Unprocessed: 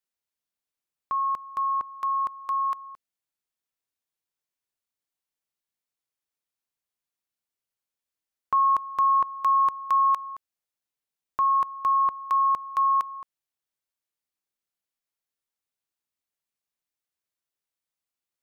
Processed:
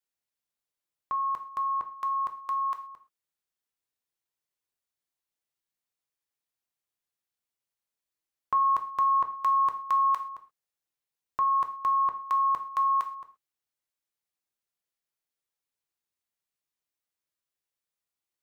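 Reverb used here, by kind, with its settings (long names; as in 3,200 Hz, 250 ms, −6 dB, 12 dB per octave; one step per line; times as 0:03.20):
reverb whose tail is shaped and stops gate 150 ms falling, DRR 6 dB
level −2 dB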